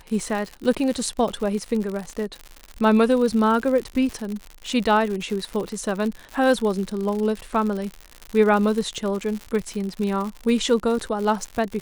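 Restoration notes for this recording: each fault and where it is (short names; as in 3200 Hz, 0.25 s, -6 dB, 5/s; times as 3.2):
crackle 110/s -27 dBFS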